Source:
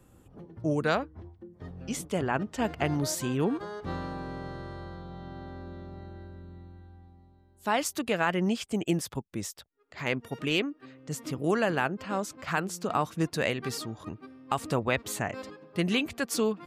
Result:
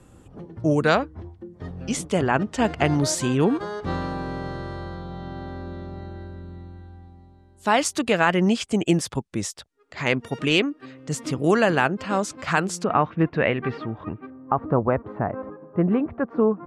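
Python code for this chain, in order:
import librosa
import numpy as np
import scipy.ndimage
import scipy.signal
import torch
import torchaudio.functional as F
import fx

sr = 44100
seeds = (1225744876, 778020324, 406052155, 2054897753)

y = fx.lowpass(x, sr, hz=fx.steps((0.0, 10000.0), (12.84, 2500.0), (14.3, 1300.0)), slope=24)
y = y * 10.0 ** (7.5 / 20.0)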